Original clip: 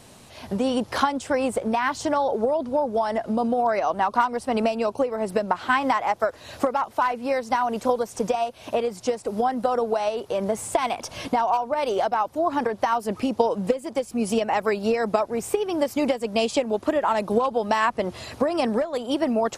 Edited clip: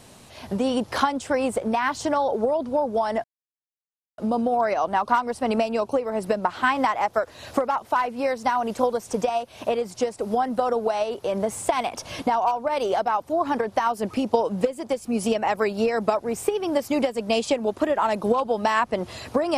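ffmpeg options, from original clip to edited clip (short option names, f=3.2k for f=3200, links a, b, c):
-filter_complex "[0:a]asplit=2[a][b];[a]atrim=end=3.24,asetpts=PTS-STARTPTS,afade=t=out:st=3.236:d=0.004:c=hsin,apad=pad_dur=0.94[c];[b]atrim=start=3.24,asetpts=PTS-STARTPTS,afade=t=in:d=0.004:c=hsin[d];[c][d]concat=n=2:v=0:a=1"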